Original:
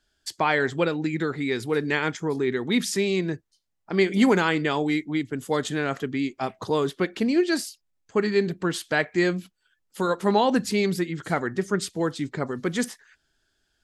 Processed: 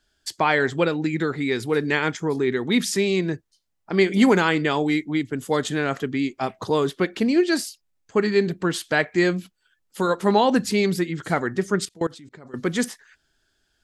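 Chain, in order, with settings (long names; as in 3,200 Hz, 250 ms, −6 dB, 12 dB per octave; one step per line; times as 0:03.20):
0:11.85–0:12.54: output level in coarse steps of 23 dB
level +2.5 dB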